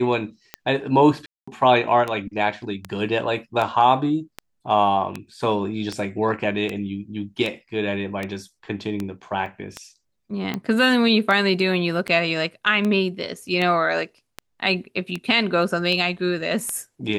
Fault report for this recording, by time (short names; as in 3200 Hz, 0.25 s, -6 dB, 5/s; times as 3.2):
tick 78 rpm -13 dBFS
1.26–1.48 gap 0.215 s
9.46 gap 2.5 ms